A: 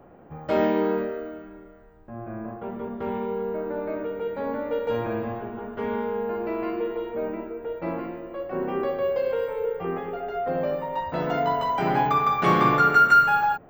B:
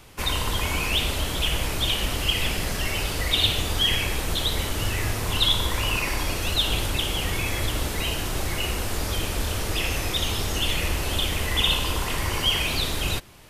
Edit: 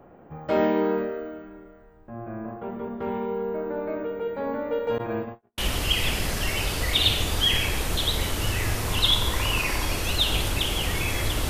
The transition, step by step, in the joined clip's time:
A
4.98–5.58 s: gate -28 dBFS, range -51 dB
5.58 s: go over to B from 1.96 s

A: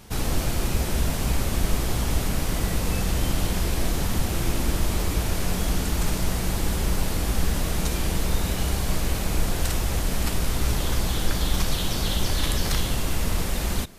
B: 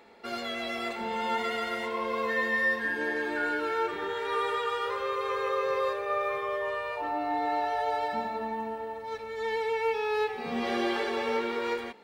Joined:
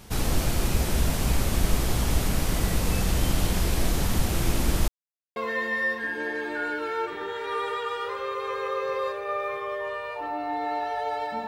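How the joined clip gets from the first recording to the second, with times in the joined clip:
A
4.88–5.36 s: mute
5.36 s: go over to B from 2.17 s

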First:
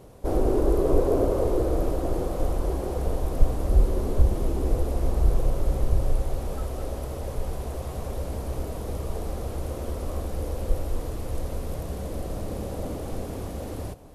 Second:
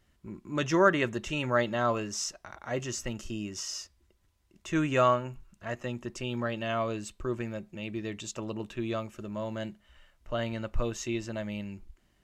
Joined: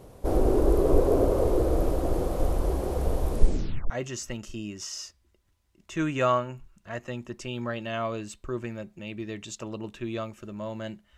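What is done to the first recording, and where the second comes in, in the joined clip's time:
first
3.31 s: tape stop 0.59 s
3.90 s: go over to second from 2.66 s

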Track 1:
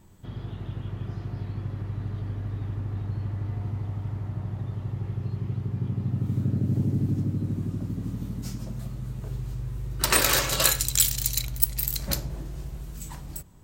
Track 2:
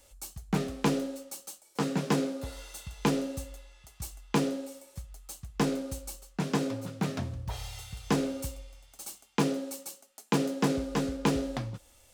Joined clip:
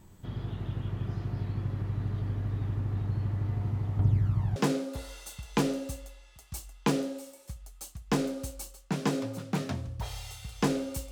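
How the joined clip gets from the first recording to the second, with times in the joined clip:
track 1
3.99–4.56 s: phaser 0.35 Hz, delay 3.4 ms, feedback 63%
4.56 s: go over to track 2 from 2.04 s

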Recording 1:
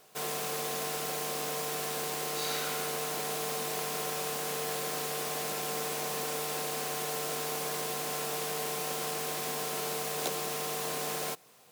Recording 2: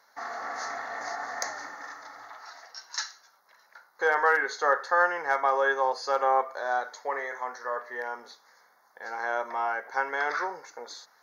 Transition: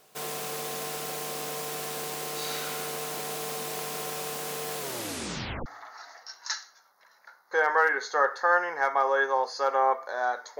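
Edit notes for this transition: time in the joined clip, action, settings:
recording 1
4.79 s: tape stop 0.87 s
5.66 s: go over to recording 2 from 2.14 s

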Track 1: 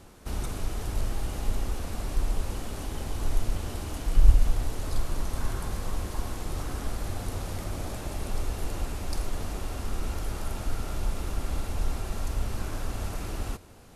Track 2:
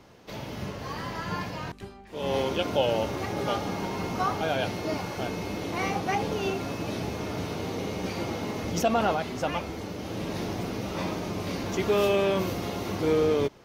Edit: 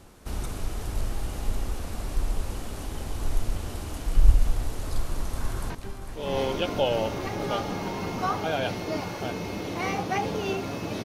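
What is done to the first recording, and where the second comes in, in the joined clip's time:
track 1
5.11–5.70 s: echo throw 450 ms, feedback 70%, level -9.5 dB
5.70 s: go over to track 2 from 1.67 s

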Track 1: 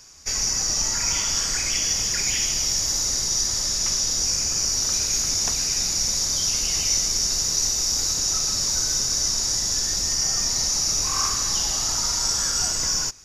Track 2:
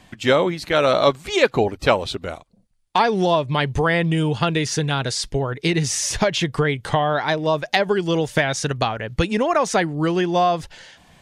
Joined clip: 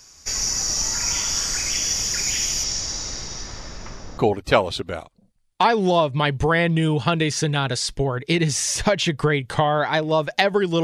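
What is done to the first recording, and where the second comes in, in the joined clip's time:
track 1
2.63–4.18 s: low-pass 6.8 kHz -> 1.2 kHz
4.18 s: go over to track 2 from 1.53 s

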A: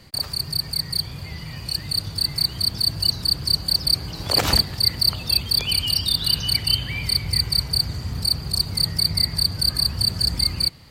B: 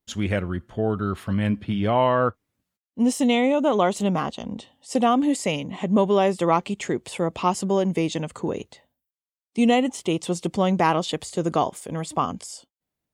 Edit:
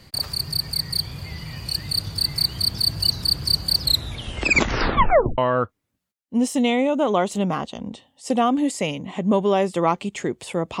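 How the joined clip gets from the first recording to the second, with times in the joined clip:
A
3.78 s: tape stop 1.60 s
5.38 s: go over to B from 2.03 s

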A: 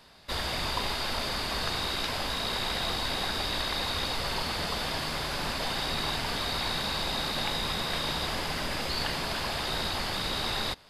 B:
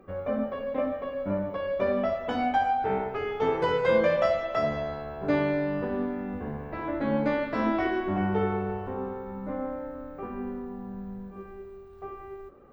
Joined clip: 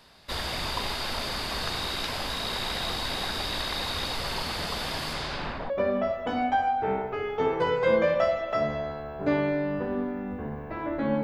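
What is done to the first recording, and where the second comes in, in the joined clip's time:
A
5.13–5.70 s: low-pass 11 kHz -> 1 kHz
5.70 s: go over to B from 1.72 s

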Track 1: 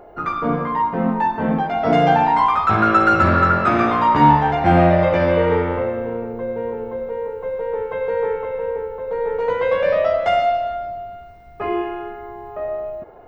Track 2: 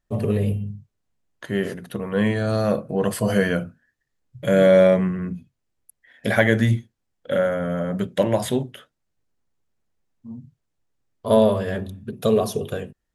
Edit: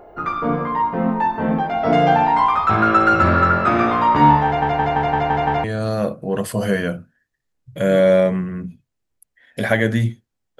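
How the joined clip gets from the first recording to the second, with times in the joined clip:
track 1
4.45 s: stutter in place 0.17 s, 7 plays
5.64 s: go over to track 2 from 2.31 s

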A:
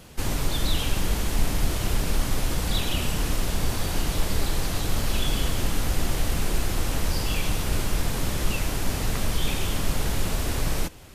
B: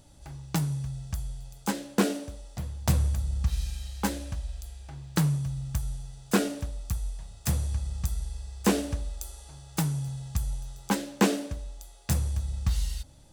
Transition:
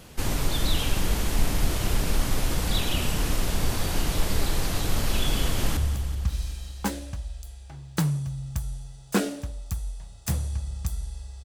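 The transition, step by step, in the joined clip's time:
A
5.39–5.77 s: echo throw 190 ms, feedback 65%, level -11 dB
5.77 s: go over to B from 2.96 s

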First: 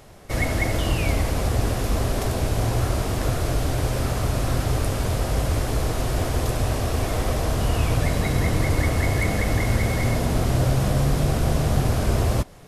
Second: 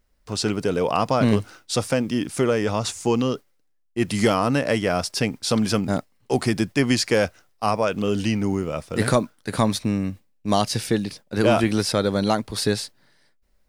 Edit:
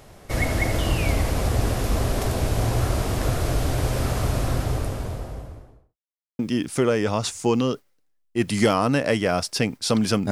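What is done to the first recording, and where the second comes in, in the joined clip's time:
first
4.20–5.97 s: studio fade out
5.97–6.39 s: mute
6.39 s: go over to second from 2.00 s

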